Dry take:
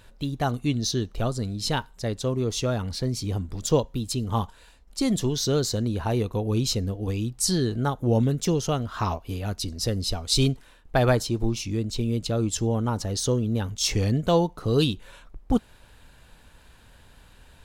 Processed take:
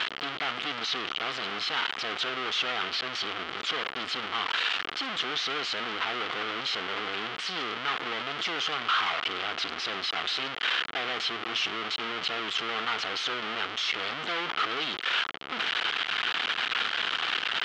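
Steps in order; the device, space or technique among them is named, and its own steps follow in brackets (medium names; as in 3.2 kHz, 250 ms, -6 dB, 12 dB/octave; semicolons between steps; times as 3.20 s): home computer beeper (one-bit comparator; cabinet simulation 570–4100 Hz, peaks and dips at 570 Hz -10 dB, 920 Hz -6 dB, 1.3 kHz +6 dB, 2.1 kHz +3 dB, 3.1 kHz +8 dB)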